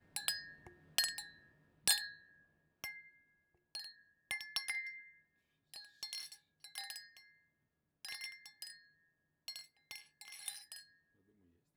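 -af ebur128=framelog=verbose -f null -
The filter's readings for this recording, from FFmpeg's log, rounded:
Integrated loudness:
  I:         -41.5 LUFS
  Threshold: -52.9 LUFS
Loudness range:
  LRA:        11.6 LU
  Threshold: -64.5 LUFS
  LRA low:   -51.2 LUFS
  LRA high:  -39.6 LUFS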